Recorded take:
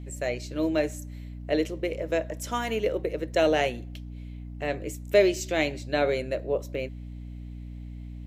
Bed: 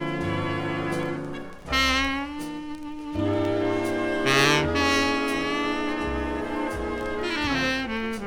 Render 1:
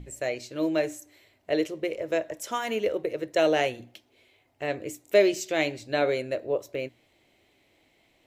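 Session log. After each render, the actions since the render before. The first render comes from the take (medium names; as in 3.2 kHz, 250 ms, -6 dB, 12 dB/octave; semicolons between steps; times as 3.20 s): hum notches 60/120/180/240/300 Hz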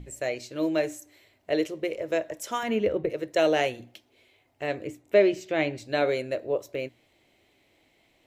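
2.63–3.10 s: tone controls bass +12 dB, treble -10 dB; 4.87–5.78 s: tone controls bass +4 dB, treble -14 dB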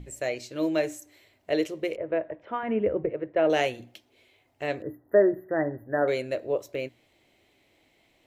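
1.96–3.50 s: Bessel low-pass 1.6 kHz, order 6; 4.82–6.08 s: brick-wall FIR band-stop 2–11 kHz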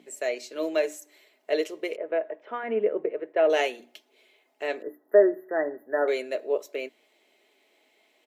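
high-pass 300 Hz 24 dB/octave; comb 4.7 ms, depth 40%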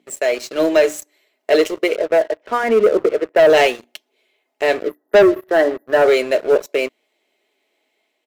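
waveshaping leveller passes 3; level rider gain up to 3 dB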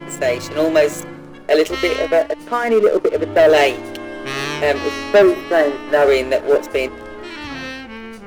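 add bed -4 dB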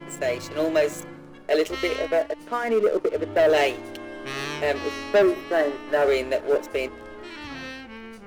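trim -7.5 dB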